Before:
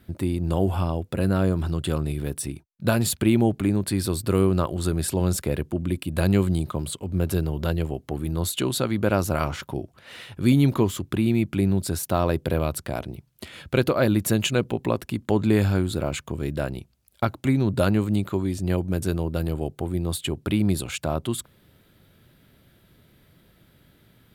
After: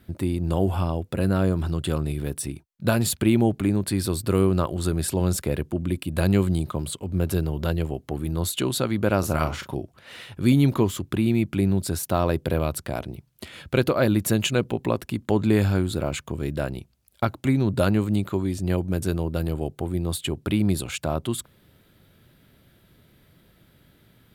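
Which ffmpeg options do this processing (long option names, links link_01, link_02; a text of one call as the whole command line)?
ffmpeg -i in.wav -filter_complex "[0:a]asettb=1/sr,asplit=3[link_01][link_02][link_03];[link_01]atrim=end=9.194[link_04];[link_02]atrim=start=9.19:end=9.75,asetpts=PTS-STARTPTS,afade=type=in:duration=0.004:curve=qsin,afade=type=out:start_time=0.556:duration=0.004:curve=qsin,asplit=2[link_05][link_06];[link_06]adelay=38,volume=-9dB[link_07];[link_05][link_07]amix=inputs=2:normalize=0,atrim=end_sample=24696[link_08];[link_03]atrim=start=9.746[link_09];[link_04][link_08]acrossfade=duration=0.004:curve1=hsin:curve2=qsin[link_10];[link_10][link_09]acrossfade=duration=0.004:curve1=qsin:curve2=hsin" out.wav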